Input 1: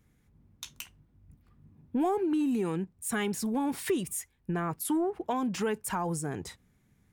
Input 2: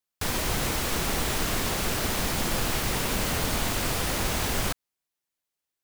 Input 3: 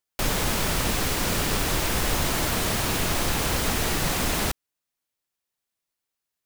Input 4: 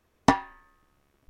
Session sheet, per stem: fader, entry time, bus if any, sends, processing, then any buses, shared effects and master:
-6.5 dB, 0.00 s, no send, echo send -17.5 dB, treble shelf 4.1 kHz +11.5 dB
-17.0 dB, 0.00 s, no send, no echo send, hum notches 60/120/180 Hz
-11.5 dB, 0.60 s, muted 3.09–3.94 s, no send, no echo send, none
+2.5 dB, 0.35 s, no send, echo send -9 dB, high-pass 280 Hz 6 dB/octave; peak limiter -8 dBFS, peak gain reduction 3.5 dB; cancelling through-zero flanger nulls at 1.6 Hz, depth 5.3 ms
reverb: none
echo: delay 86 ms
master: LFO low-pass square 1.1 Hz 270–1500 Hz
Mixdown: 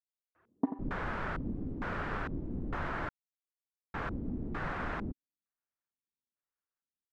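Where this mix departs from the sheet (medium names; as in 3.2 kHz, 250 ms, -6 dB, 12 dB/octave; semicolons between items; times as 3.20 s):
stem 1: muted; stem 2: muted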